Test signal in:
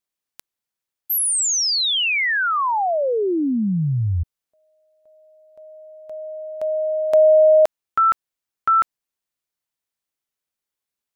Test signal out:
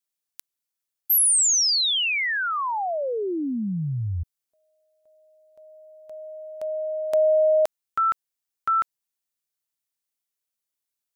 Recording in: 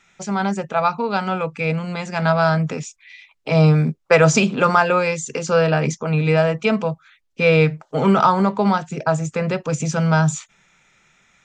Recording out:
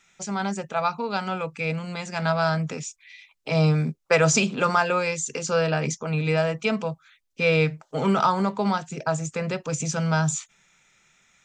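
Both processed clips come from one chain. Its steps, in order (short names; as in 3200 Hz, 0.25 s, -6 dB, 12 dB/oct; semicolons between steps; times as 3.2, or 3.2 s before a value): high shelf 3900 Hz +9 dB; gain -6.5 dB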